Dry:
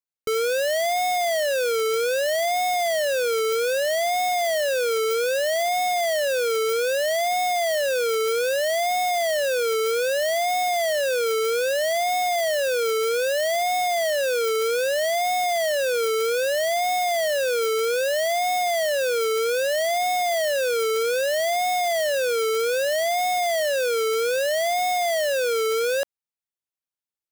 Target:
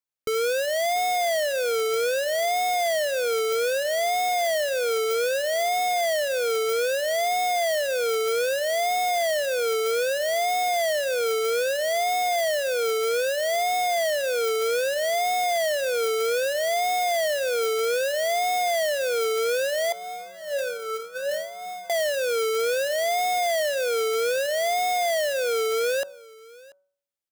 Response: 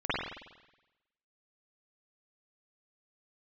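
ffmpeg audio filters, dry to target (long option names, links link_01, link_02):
-filter_complex "[0:a]bandreject=frequency=188.4:width_type=h:width=4,bandreject=frequency=376.8:width_type=h:width=4,bandreject=frequency=565.2:width_type=h:width=4,bandreject=frequency=753.6:width_type=h:width=4,bandreject=frequency=942:width_type=h:width=4,bandreject=frequency=1130.4:width_type=h:width=4,bandreject=frequency=1318.8:width_type=h:width=4,bandreject=frequency=1507.2:width_type=h:width=4,alimiter=limit=-23dB:level=0:latency=1:release=54,asettb=1/sr,asplit=3[link_01][link_02][link_03];[link_01]atrim=end=19.924[link_04];[link_02]atrim=start=19.92:end=21.9,asetpts=PTS-STARTPTS,afade=type=in:duration=0.004:curve=qsin,afade=type=out:start_time=1.976:duration=0.004:curve=qsin,aeval=exprs='0.0708*sin(PI/2*2*val(0)/0.0708)':channel_layout=same[link_05];[link_03]atrim=start=21.896[link_06];[link_04][link_05]acrossfade=duration=0.004:curve1=hsin:curve2=qsin[link_07];[link_07][link_06]acrossfade=duration=0.004:curve1=qsin:curve2=hsin,asplit=2[link_08][link_09];[link_09]aecho=0:1:687:0.0708[link_10];[link_08][link_10]amix=inputs=2:normalize=0"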